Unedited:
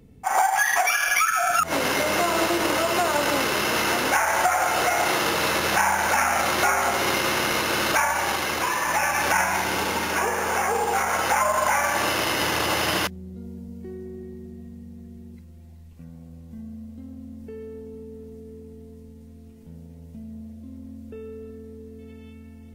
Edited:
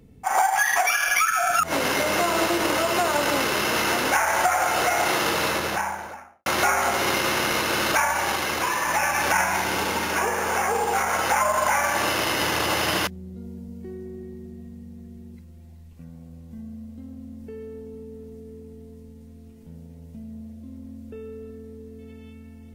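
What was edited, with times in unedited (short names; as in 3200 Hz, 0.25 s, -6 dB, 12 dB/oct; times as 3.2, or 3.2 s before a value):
5.34–6.46 studio fade out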